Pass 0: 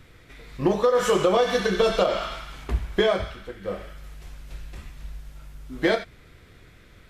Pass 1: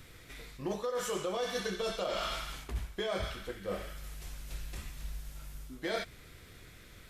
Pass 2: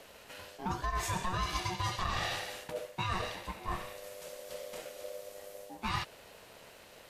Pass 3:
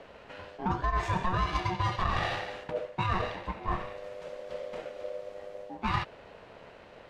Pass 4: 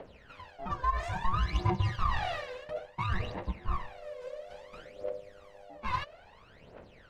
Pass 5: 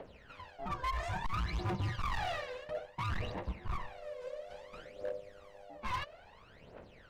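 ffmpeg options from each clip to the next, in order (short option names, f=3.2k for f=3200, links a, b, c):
-af "highshelf=f=4.5k:g=11.5,areverse,acompressor=threshold=-28dB:ratio=10,areverse,volume=-3.5dB"
-af "lowshelf=f=150:g=-6,aeval=exprs='val(0)*sin(2*PI*550*n/s)':c=same,volume=4dB"
-af "adynamicsmooth=sensitivity=1.5:basefreq=2.4k,volume=6dB"
-af "aphaser=in_gain=1:out_gain=1:delay=2:decay=0.78:speed=0.59:type=triangular,volume=-7.5dB"
-af "asoftclip=type=hard:threshold=-30dB,volume=-1.5dB"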